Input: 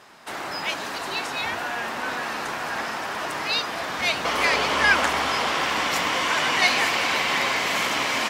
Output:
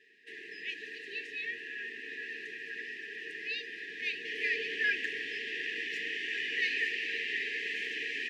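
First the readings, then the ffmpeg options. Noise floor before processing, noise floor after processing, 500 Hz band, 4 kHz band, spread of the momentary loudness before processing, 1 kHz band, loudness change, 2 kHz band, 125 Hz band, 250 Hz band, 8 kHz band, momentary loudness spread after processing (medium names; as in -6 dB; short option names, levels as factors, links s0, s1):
-32 dBFS, -47 dBFS, -16.0 dB, -14.0 dB, 10 LU, under -40 dB, -11.5 dB, -9.5 dB, under -25 dB, -17.5 dB, under -20 dB, 11 LU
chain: -filter_complex "[0:a]asplit=3[s0][s1][s2];[s0]bandpass=f=530:t=q:w=8,volume=1[s3];[s1]bandpass=f=1840:t=q:w=8,volume=0.501[s4];[s2]bandpass=f=2480:t=q:w=8,volume=0.355[s5];[s3][s4][s5]amix=inputs=3:normalize=0,afftfilt=real='re*(1-between(b*sr/4096,460,1600))':imag='im*(1-between(b*sr/4096,460,1600))':win_size=4096:overlap=0.75,afreqshift=14,volume=1.26"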